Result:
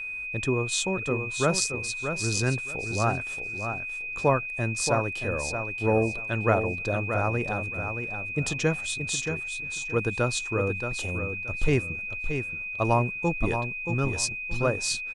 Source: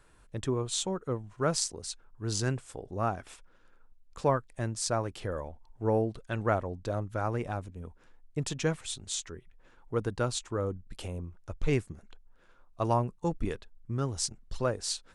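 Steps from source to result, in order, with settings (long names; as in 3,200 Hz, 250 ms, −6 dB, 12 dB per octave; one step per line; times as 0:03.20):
repeating echo 626 ms, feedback 21%, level −7.5 dB
steady tone 2,500 Hz −36 dBFS
level +4 dB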